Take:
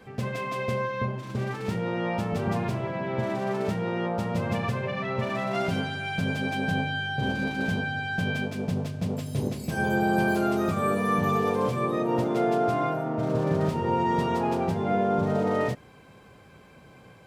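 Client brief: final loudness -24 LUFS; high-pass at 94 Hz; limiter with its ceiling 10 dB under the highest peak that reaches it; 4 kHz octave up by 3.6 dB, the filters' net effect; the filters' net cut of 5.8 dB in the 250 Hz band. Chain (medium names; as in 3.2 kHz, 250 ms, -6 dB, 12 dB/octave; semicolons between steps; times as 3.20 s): high-pass 94 Hz; peaking EQ 250 Hz -8.5 dB; peaking EQ 4 kHz +5 dB; trim +9 dB; peak limiter -15.5 dBFS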